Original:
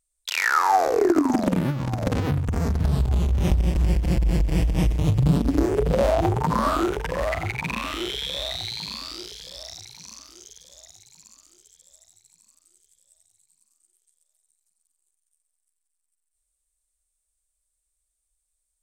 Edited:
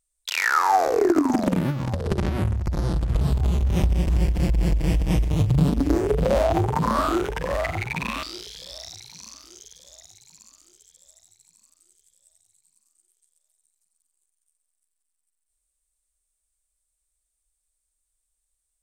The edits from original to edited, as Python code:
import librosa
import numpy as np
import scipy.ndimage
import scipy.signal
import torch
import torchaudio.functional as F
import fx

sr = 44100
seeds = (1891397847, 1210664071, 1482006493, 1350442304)

y = fx.edit(x, sr, fx.speed_span(start_s=1.93, length_s=0.96, speed=0.75),
    fx.cut(start_s=7.91, length_s=1.17), tone=tone)